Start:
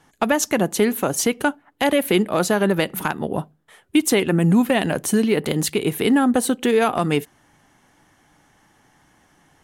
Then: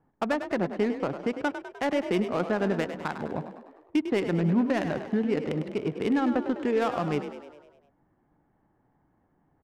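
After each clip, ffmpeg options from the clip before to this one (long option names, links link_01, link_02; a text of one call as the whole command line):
ffmpeg -i in.wav -filter_complex "[0:a]lowpass=2700,adynamicsmooth=sensitivity=1.5:basefreq=920,asplit=8[link_01][link_02][link_03][link_04][link_05][link_06][link_07][link_08];[link_02]adelay=101,afreqshift=38,volume=-10dB[link_09];[link_03]adelay=202,afreqshift=76,volume=-14.9dB[link_10];[link_04]adelay=303,afreqshift=114,volume=-19.8dB[link_11];[link_05]adelay=404,afreqshift=152,volume=-24.6dB[link_12];[link_06]adelay=505,afreqshift=190,volume=-29.5dB[link_13];[link_07]adelay=606,afreqshift=228,volume=-34.4dB[link_14];[link_08]adelay=707,afreqshift=266,volume=-39.3dB[link_15];[link_01][link_09][link_10][link_11][link_12][link_13][link_14][link_15]amix=inputs=8:normalize=0,volume=-8dB" out.wav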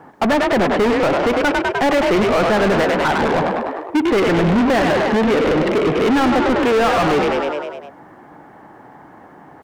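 ffmpeg -i in.wav -filter_complex "[0:a]asplit=2[link_01][link_02];[link_02]highpass=frequency=720:poles=1,volume=34dB,asoftclip=type=tanh:threshold=-14.5dB[link_03];[link_01][link_03]amix=inputs=2:normalize=0,lowpass=frequency=2700:poles=1,volume=-6dB,volume=5.5dB" out.wav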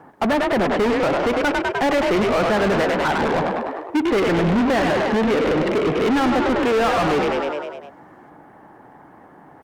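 ffmpeg -i in.wav -af "volume=-3dB" -ar 48000 -c:a libopus -b:a 48k out.opus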